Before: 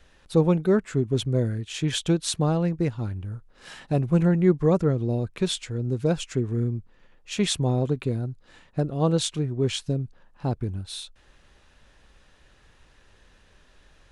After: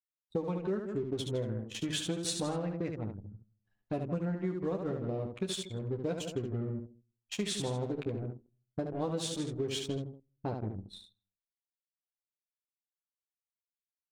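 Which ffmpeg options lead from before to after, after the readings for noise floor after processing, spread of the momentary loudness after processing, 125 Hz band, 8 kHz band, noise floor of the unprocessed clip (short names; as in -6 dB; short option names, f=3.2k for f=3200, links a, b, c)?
under -85 dBFS, 9 LU, -13.5 dB, -7.5 dB, -58 dBFS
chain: -filter_complex "[0:a]highpass=f=190:p=1,agate=range=-33dB:threshold=-49dB:ratio=3:detection=peak,aeval=exprs='sgn(val(0))*max(abs(val(0))-0.00631,0)':c=same,asplit=2[a][b];[b]aecho=0:1:160|320|480:0.251|0.0603|0.0145[c];[a][c]amix=inputs=2:normalize=0,anlmdn=6.31,asplit=2[d][e];[e]aecho=0:1:10|28|73:0.596|0.158|0.501[f];[d][f]amix=inputs=2:normalize=0,acompressor=threshold=-26dB:ratio=10,volume=-4dB" -ar 44100 -c:a aac -b:a 64k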